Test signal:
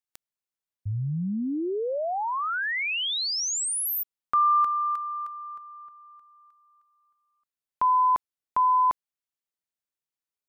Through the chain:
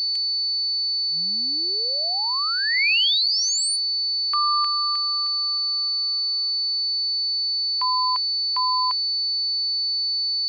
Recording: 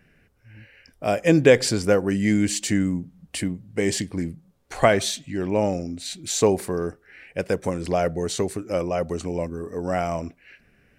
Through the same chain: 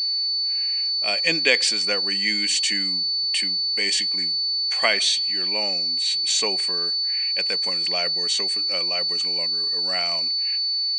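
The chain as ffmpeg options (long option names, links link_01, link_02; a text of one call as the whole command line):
ffmpeg -i in.wav -af "afftfilt=real='re*between(b*sr/4096,160,9700)':imag='im*between(b*sr/4096,160,9700)':win_size=4096:overlap=0.75,equalizer=frequency=1300:width_type=o:width=1.6:gain=12.5,aeval=exprs='val(0)+0.0631*sin(2*PI*4500*n/s)':channel_layout=same,aexciter=amount=15.1:drive=2.8:freq=2200,bass=frequency=250:gain=-3,treble=frequency=4000:gain=-12,volume=-13.5dB" out.wav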